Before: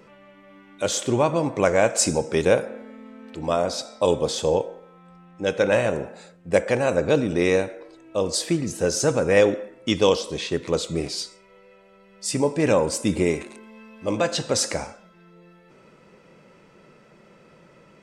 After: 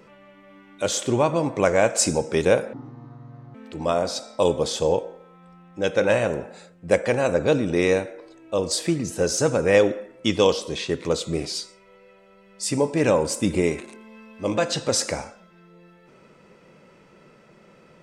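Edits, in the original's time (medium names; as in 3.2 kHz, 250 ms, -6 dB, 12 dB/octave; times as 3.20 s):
2.73–3.17 s: speed 54%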